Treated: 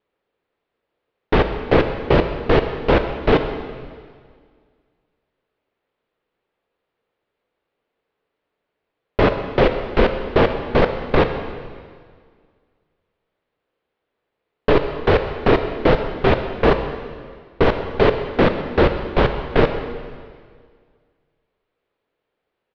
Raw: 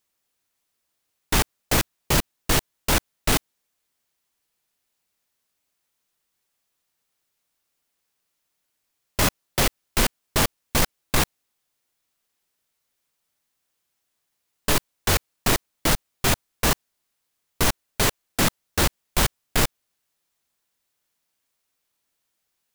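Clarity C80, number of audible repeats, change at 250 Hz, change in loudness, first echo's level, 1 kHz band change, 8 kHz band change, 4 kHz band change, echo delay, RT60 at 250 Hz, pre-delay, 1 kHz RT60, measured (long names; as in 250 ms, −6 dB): 9.0 dB, 1, +8.5 dB, +4.5 dB, −17.5 dB, +6.5 dB, below −30 dB, −4.0 dB, 131 ms, 2.0 s, 13 ms, 1.9 s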